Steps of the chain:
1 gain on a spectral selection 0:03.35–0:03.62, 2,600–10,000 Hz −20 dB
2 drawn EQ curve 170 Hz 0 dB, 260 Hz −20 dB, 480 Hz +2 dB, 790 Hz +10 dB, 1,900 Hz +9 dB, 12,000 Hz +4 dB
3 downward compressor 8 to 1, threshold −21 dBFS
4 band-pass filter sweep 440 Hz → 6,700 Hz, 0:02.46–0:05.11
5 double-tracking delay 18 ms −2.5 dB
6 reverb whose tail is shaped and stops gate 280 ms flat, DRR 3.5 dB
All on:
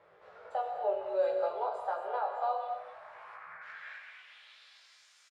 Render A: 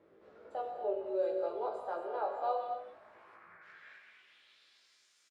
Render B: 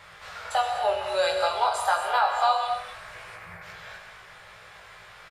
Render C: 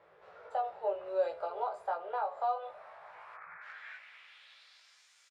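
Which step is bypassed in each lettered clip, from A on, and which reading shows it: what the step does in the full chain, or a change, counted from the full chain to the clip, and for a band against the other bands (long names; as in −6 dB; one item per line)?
2, change in momentary loudness spread +1 LU
4, 4 kHz band +12.0 dB
6, change in crest factor +1.5 dB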